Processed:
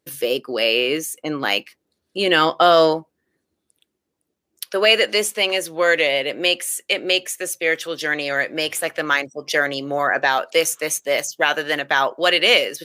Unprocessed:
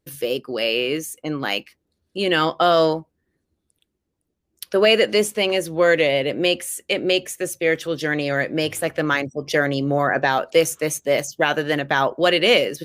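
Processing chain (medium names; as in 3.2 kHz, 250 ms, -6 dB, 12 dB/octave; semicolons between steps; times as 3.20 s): high-pass 330 Hz 6 dB/octave, from 4.64 s 920 Hz; trim +4 dB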